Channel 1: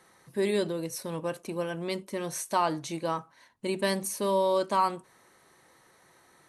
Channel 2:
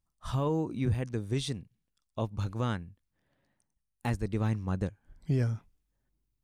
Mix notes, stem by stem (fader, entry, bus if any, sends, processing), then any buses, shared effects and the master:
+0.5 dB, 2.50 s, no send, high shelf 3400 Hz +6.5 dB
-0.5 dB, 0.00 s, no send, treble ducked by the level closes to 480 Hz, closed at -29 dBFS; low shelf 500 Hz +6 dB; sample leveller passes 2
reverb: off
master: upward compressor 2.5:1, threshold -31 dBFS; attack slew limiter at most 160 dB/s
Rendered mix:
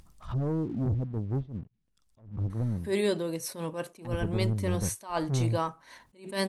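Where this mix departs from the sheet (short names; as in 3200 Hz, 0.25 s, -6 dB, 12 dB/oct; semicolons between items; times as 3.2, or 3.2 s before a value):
stem 1: missing high shelf 3400 Hz +6.5 dB; stem 2 -0.5 dB -> -7.5 dB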